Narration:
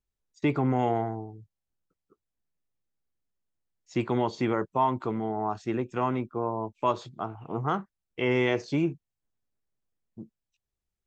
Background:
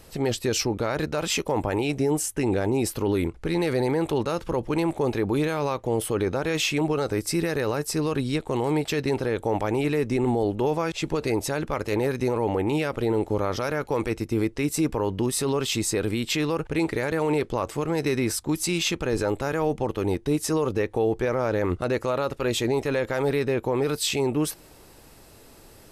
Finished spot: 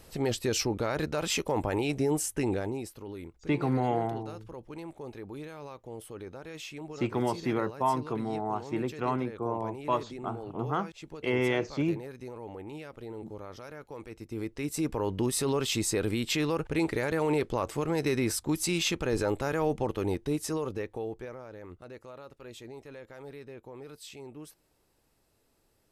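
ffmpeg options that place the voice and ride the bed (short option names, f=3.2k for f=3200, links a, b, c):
-filter_complex "[0:a]adelay=3050,volume=-2.5dB[a];[1:a]volume=10dB,afade=t=out:st=2.4:d=0.5:silence=0.211349,afade=t=in:st=14.11:d=1.13:silence=0.199526,afade=t=out:st=19.81:d=1.64:silence=0.133352[b];[a][b]amix=inputs=2:normalize=0"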